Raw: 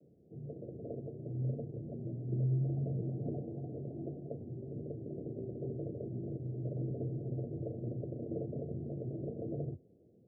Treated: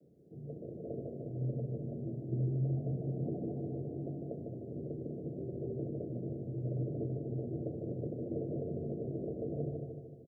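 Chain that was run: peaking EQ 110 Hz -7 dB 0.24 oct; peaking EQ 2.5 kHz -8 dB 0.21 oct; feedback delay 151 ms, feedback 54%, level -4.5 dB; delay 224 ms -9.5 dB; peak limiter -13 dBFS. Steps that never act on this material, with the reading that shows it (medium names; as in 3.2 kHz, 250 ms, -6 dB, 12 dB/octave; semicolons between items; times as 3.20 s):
peaking EQ 2.5 kHz: input has nothing above 720 Hz; peak limiter -13 dBFS: peak at its input -24.5 dBFS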